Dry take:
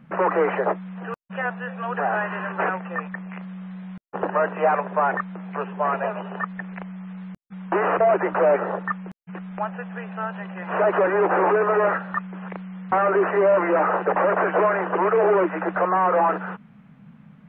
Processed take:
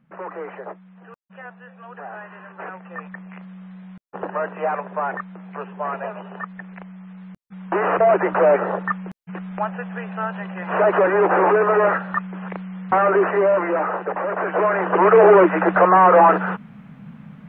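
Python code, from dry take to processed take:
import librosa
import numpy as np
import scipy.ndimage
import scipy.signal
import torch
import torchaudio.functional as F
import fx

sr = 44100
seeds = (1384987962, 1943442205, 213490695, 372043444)

y = fx.gain(x, sr, db=fx.line((2.56, -12.0), (3.08, -3.5), (7.17, -3.5), (8.11, 3.0), (13.14, 3.0), (14.24, -5.0), (15.14, 7.5)))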